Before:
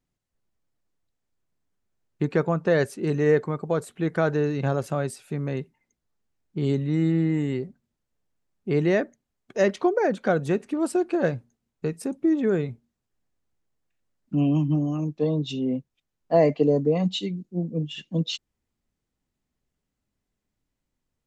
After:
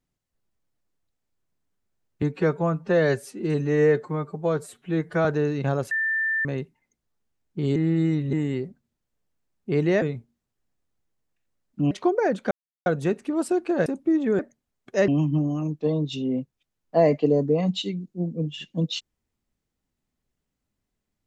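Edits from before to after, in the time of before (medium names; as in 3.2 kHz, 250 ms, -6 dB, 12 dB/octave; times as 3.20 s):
2.22–4.24 s: stretch 1.5×
4.90–5.44 s: bleep 1.78 kHz -21.5 dBFS
6.75–7.32 s: reverse
9.01–9.70 s: swap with 12.56–14.45 s
10.30 s: insert silence 0.35 s
11.30–12.03 s: delete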